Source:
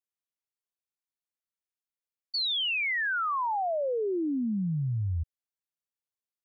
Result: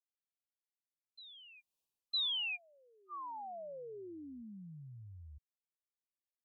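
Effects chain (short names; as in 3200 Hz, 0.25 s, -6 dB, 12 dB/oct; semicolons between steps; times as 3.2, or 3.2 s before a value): Doppler pass-by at 1.78, 42 m/s, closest 4.6 m; brick-wall FIR band-stop 1200–2400 Hz; reverse echo 0.958 s -20 dB; gain +6.5 dB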